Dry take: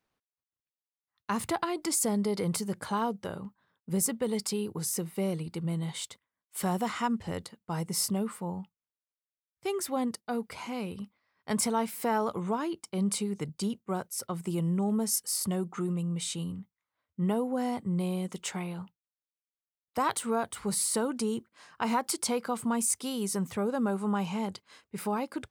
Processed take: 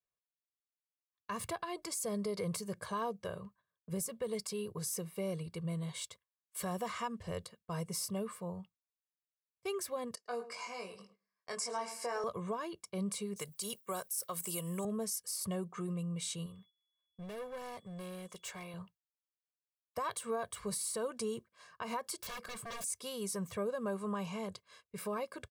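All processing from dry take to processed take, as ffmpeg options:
-filter_complex "[0:a]asettb=1/sr,asplit=3[s0][s1][s2];[s0]atrim=end=10.154[s3];[s1]atrim=start=10.15:end=12.24,asetpts=PTS-STARTPTS,afade=t=in:d=0.004:c=qsin,afade=t=out:st=2.086:d=0.004:c=qsin,highpass=400,equalizer=f=560:t=q:w=4:g=-4,equalizer=f=3500:t=q:w=4:g=-8,equalizer=f=5100:t=q:w=4:g=9,equalizer=f=7200:t=q:w=4:g=5,lowpass=f=9700:w=0.5412,lowpass=f=9700:w=1.3066,asplit=2[s4][s5];[s5]adelay=21,volume=0.631[s6];[s4][s6]amix=inputs=2:normalize=0,atrim=end_sample=92169,asplit=2[s7][s8];[s8]adelay=106,lowpass=f=1700:p=1,volume=0.224,asplit=2[s9][s10];[s10]adelay=106,lowpass=f=1700:p=1,volume=0.32,asplit=2[s11][s12];[s12]adelay=106,lowpass=f=1700:p=1,volume=0.32[s13];[s7][s9][s11][s13]amix=inputs=4:normalize=0,atrim=end_sample=92169[s14];[s2]atrim=start=12.236[s15];[s3][s14]acrossfade=d=0.004:c1=hsin:c2=qsin[s16];[s16][s15]acrossfade=d=0.004:c1=qsin:c2=hsin,asettb=1/sr,asplit=3[s17][s18][s19];[s17]atrim=end=13.364[s20];[s18]atrim=start=13.36:end=14.85,asetpts=PTS-STARTPTS,afade=t=in:d=0.004:c=qsin,afade=t=out:st=1.486:d=0.004:c=qsin,aemphasis=mode=production:type=riaa,acontrast=27[s21];[s19]atrim=start=14.846[s22];[s20][s21]acrossfade=d=0.004:c1=hsin:c2=qsin[s23];[s23][s22]acrossfade=d=0.004:c1=qsin:c2=hsin,asettb=1/sr,asplit=3[s24][s25][s26];[s24]atrim=end=16.464[s27];[s25]atrim=start=16.46:end=18.74,asetpts=PTS-STARTPTS,afade=t=in:d=0.004:c=qsin,afade=t=out:st=2.276:d=0.004:c=qsin,lowshelf=f=270:g=-10.5,asoftclip=type=hard:threshold=0.015,aeval=exprs='val(0)+0.000355*sin(2*PI*3400*n/s)':c=same[s28];[s26]atrim=start=18.736[s29];[s27][s28]acrossfade=d=0.004:c1=hsin:c2=qsin[s30];[s30][s29]acrossfade=d=0.004:c1=qsin:c2=hsin,asettb=1/sr,asplit=3[s31][s32][s33];[s31]atrim=end=22.204[s34];[s32]atrim=start=22.2:end=22.84,asetpts=PTS-STARTPTS,afade=t=in:d=0.004:c=qsin,afade=t=out:st=0.636:d=0.004:c=qsin,highpass=47,aeval=exprs='0.02*(abs(mod(val(0)/0.02+3,4)-2)-1)':c=same[s35];[s33]atrim=start=22.836[s36];[s34][s35]acrossfade=d=0.004:c1=hsin:c2=qsin[s37];[s37][s36]acrossfade=d=0.004:c1=qsin:c2=hsin,agate=range=0.224:threshold=0.00158:ratio=16:detection=peak,aecho=1:1:1.8:0.76,alimiter=limit=0.0841:level=0:latency=1:release=121,volume=0.473"

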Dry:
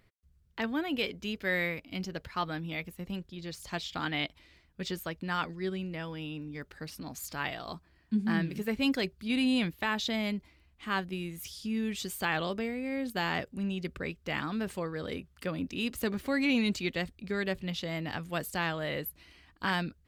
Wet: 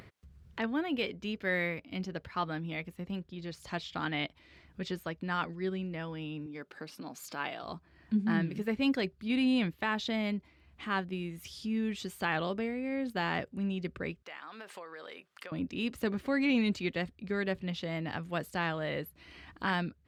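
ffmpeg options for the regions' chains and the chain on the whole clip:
-filter_complex "[0:a]asettb=1/sr,asplit=3[s0][s1][s2];[s0]atrim=end=6.464[s3];[s1]atrim=start=6.46:end=7.63,asetpts=PTS-STARTPTS,afade=t=in:d=0.004:c=qsin,afade=t=out:st=1.166:d=0.004:c=qsin,highpass=240,bandreject=f=1900:w=11[s4];[s2]atrim=start=7.626[s5];[s3][s4]acrossfade=d=0.004:c1=hsin:c2=qsin[s6];[s6][s5]acrossfade=d=0.004:c1=qsin:c2=hsin,asettb=1/sr,asplit=3[s7][s8][s9];[s7]atrim=end=14.224[s10];[s8]atrim=start=14.22:end=15.52,asetpts=PTS-STARTPTS,afade=t=in:d=0.004:c=qsin,afade=t=out:st=1.296:d=0.004:c=qsin,highpass=700,acompressor=threshold=0.00501:ratio=2.5:attack=3.2:release=140:knee=1:detection=peak[s11];[s9]atrim=start=15.516[s12];[s10][s11]acrossfade=d=0.004:c1=hsin:c2=qsin[s13];[s13][s12]acrossfade=d=0.004:c1=qsin:c2=hsin,lowpass=f=2800:p=1,acompressor=mode=upward:threshold=0.0112:ratio=2.5,highpass=71"

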